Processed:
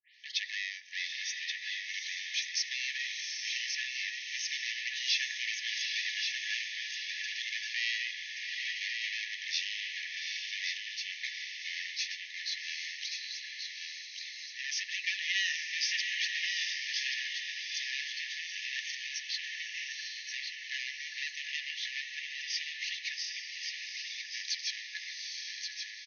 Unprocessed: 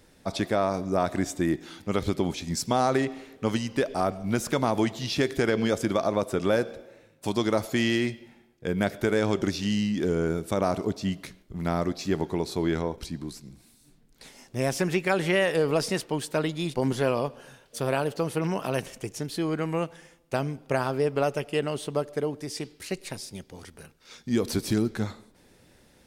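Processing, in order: tape start-up on the opening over 0.36 s; treble shelf 4.5 kHz -9.5 dB; saturation -30 dBFS, distortion -6 dB; echo that smears into a reverb 790 ms, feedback 40%, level -4 dB; FFT band-pass 1.7–6.5 kHz; delay 1129 ms -5.5 dB; trim +9 dB

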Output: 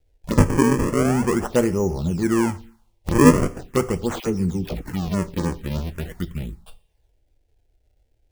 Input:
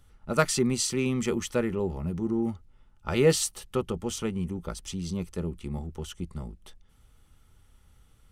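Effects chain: gate -48 dBFS, range -13 dB; decimation with a swept rate 36×, swing 160% 0.41 Hz; on a send at -12 dB: reverberation, pre-delay 3 ms; on the sum: touch-sensitive phaser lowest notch 190 Hz, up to 3.8 kHz, full sweep at -26.5 dBFS; 4.20–4.82 s: phase dispersion lows, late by 47 ms, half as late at 590 Hz; trim +8 dB

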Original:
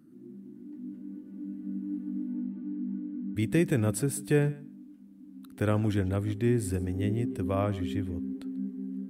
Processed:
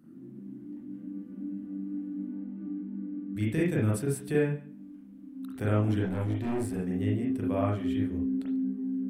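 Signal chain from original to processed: in parallel at +2 dB: compression, threshold -39 dBFS, peak gain reduction 18 dB; 6.01–6.74 s: on the sum: overload inside the chain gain 24 dB; reverberation, pre-delay 38 ms, DRR -4.5 dB; trim -8.5 dB

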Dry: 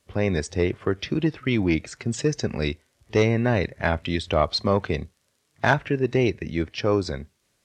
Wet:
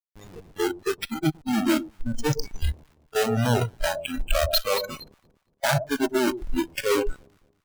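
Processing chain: Schmitt trigger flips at -24.5 dBFS; echo whose repeats swap between lows and highs 115 ms, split 900 Hz, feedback 57%, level -4.5 dB; spectral noise reduction 26 dB; trim +6 dB

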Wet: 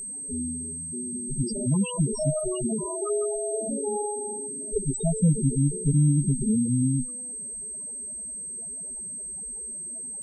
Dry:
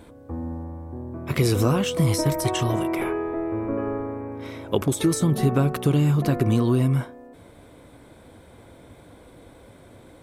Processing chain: comb filter that takes the minimum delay 4.8 ms; level-controlled noise filter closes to 1.6 kHz, open at -21 dBFS; in parallel at -2.5 dB: peak limiter -21.5 dBFS, peak gain reduction 11 dB; on the sum: loudest bins only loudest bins 4; whistle 8.3 kHz -32 dBFS; trim -1 dB

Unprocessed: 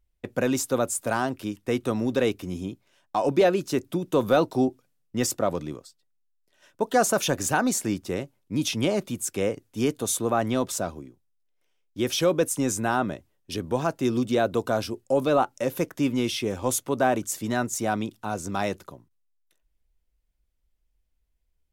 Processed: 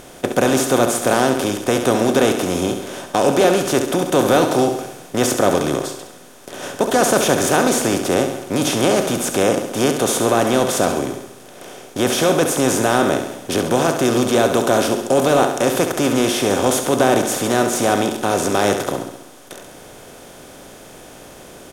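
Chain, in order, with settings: spectral levelling over time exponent 0.4; band-stop 7.5 kHz, Q 20; feedback delay 68 ms, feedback 56%, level -8 dB; trim +1 dB

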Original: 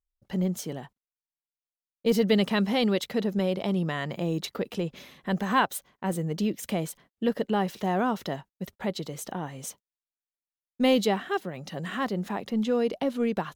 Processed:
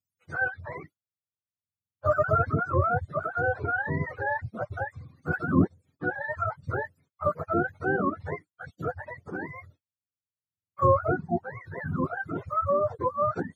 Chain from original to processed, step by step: spectrum inverted on a logarithmic axis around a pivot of 530 Hz; reverb removal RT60 0.88 s; trim +2 dB

